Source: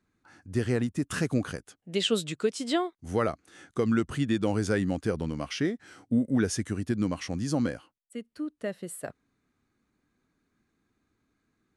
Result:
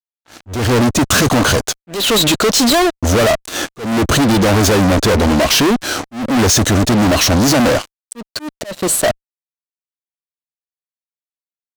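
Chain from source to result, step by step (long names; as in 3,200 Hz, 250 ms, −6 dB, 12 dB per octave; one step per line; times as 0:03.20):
thirty-one-band graphic EQ 160 Hz −10 dB, 630 Hz +10 dB, 2,000 Hz −10 dB, 4,000 Hz +8 dB, 6,300 Hz +5 dB, 10,000 Hz −10 dB
fuzz pedal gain 48 dB, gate −53 dBFS
volume swells 284 ms
level +2.5 dB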